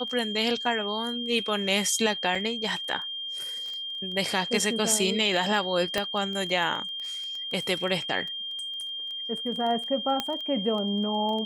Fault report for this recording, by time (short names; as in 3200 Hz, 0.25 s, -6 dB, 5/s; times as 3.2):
crackle 11/s -32 dBFS
tone 3200 Hz -32 dBFS
2.35 gap 4.5 ms
5.98 pop -12 dBFS
10.2 pop -12 dBFS